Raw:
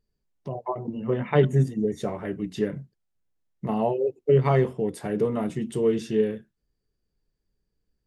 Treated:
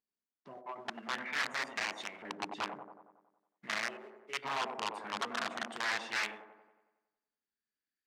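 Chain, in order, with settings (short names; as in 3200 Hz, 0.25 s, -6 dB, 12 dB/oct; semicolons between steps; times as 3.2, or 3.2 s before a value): graphic EQ 125/250/500/1000/2000/4000/8000 Hz -6/+9/-6/-7/+4/+7/+7 dB; in parallel at -10.5 dB: companded quantiser 4-bit; 3.97–4.43 on the sum: resonator 210 Hz, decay 0.47 s, harmonics all, mix 70%; wrapped overs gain 16 dB; LFO band-pass saw up 0.45 Hz 930–2600 Hz; on a send: band-limited delay 92 ms, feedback 57%, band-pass 400 Hz, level -5 dB; on the sum: core saturation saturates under 3700 Hz; gain -2 dB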